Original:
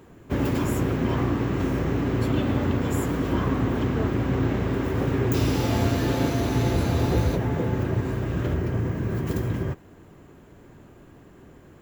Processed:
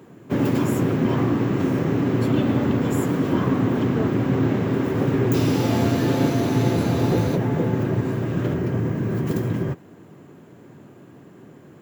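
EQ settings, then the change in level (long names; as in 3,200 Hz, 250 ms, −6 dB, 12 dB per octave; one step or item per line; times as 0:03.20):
high-pass filter 120 Hz 24 dB per octave
low-shelf EQ 480 Hz +5 dB
+1.0 dB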